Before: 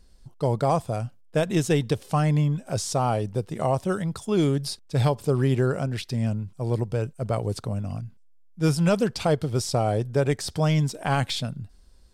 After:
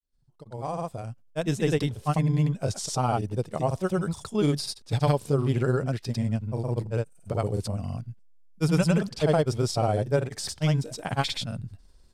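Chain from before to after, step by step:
fade in at the beginning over 2.03 s
granular cloud 100 ms, pitch spread up and down by 0 semitones

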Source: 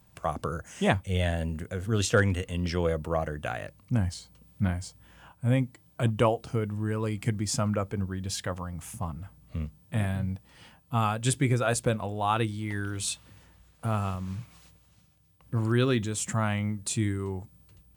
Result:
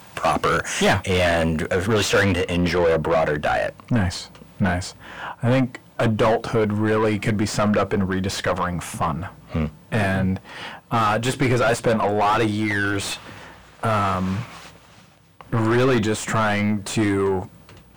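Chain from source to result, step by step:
mid-hump overdrive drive 32 dB, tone 3,800 Hz, clips at −9.5 dBFS, from 0:01.06 tone 2,300 Hz, from 0:02.33 tone 1,400 Hz

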